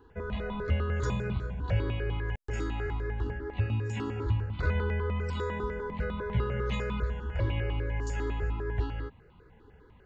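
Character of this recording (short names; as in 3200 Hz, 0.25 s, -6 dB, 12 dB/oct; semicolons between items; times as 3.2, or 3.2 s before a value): notches that jump at a steady rate 10 Hz 610–1700 Hz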